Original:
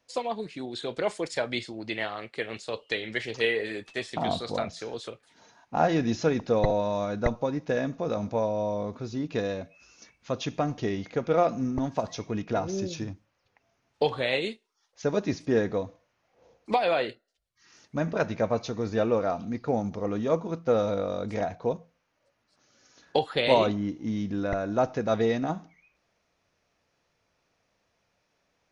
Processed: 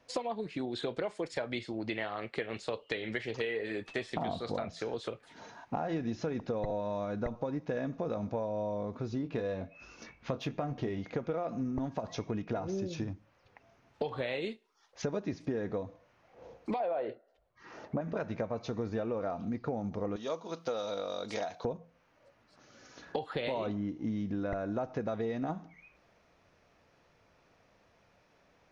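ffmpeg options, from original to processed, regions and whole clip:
ffmpeg -i in.wav -filter_complex "[0:a]asettb=1/sr,asplit=3[link_01][link_02][link_03];[link_01]atrim=end=9.224[link_04];[link_02]atrim=start=9.22:end=10.98,asetpts=PTS-STARTPTS,afade=type=in:duration=0.004:curve=qsin,afade=type=out:start_time=1.756:duration=0.004:curve=qsin,adynamicsmooth=sensitivity=6.5:basefreq=5900,asplit=2[link_05][link_06];[link_06]adelay=22,volume=-9dB[link_07];[link_05][link_07]amix=inputs=2:normalize=0,atrim=end_sample=77616[link_08];[link_03]atrim=start=10.976[link_09];[link_04][link_08]acrossfade=duration=0.004:curve1=hsin:curve2=qsin[link_10];[link_10][link_09]acrossfade=duration=0.004:curve1=qsin:curve2=hsin,asettb=1/sr,asplit=3[link_11][link_12][link_13];[link_11]atrim=end=16.804[link_14];[link_12]atrim=start=16.8:end=18.01,asetpts=PTS-STARTPTS,afade=type=in:duration=0.004:curve=qsin,afade=type=out:start_time=1.206:duration=0.004:curve=qsin,lowpass=frequency=2100:poles=1,equalizer=frequency=640:width_type=o:width=1.8:gain=13[link_15];[link_13]atrim=start=18.006[link_16];[link_14][link_15]acrossfade=duration=0.004:curve1=hsin:curve2=qsin[link_17];[link_17][link_16]acrossfade=duration=0.004:curve1=qsin:curve2=hsin,asettb=1/sr,asplit=3[link_18][link_19][link_20];[link_18]atrim=end=20.164[link_21];[link_19]atrim=start=20.16:end=21.65,asetpts=PTS-STARTPTS,afade=type=in:duration=0.004:curve=qsin,afade=type=out:start_time=1.486:duration=0.004:curve=qsin,highpass=frequency=990:poles=1,highshelf=frequency=2800:width_type=q:width=1.5:gain=8[link_22];[link_20]atrim=start=21.646[link_23];[link_21][link_22]acrossfade=duration=0.004:curve1=hsin:curve2=qsin[link_24];[link_24][link_23]acrossfade=duration=0.004:curve1=qsin:curve2=hsin,highshelf=frequency=3800:gain=-11.5,alimiter=limit=-17.5dB:level=0:latency=1:release=109,acompressor=threshold=-42dB:ratio=5,volume=8.5dB" out.wav

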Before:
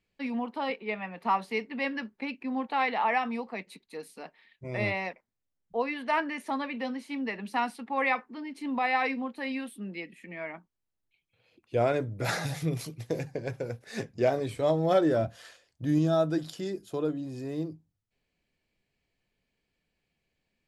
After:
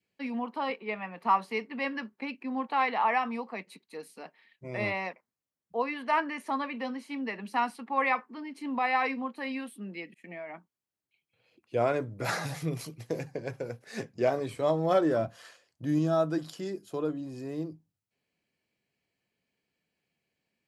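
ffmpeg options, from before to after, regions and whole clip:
ffmpeg -i in.wav -filter_complex "[0:a]asettb=1/sr,asplit=3[link_01][link_02][link_03];[link_01]atrim=end=10.144[link_04];[link_02]atrim=start=10.14:end=10.54,asetpts=PTS-STARTPTS,afade=type=in:duration=0.004:curve=qsin,afade=type=out:start_time=0.396:duration=0.004:curve=qsin,equalizer=frequency=720:width_type=o:width=0.4:gain=10.5,acompressor=threshold=-36dB:ratio=6:attack=3.2:release=140:knee=1:detection=peak,agate=range=-33dB:threshold=-50dB:ratio=3:release=100:detection=peak[link_05];[link_03]atrim=start=10.536[link_06];[link_04][link_05]acrossfade=duration=0.004:curve1=hsin:curve2=qsin[link_07];[link_07][link_06]acrossfade=duration=0.004:curve1=qsin:curve2=hsin,highpass=120,bandreject=frequency=3600:width=17,adynamicequalizer=threshold=0.00501:dfrequency=1100:dqfactor=3:tfrequency=1100:tqfactor=3:attack=5:release=100:ratio=0.375:range=3:mode=boostabove:tftype=bell,volume=-1.5dB" out.wav

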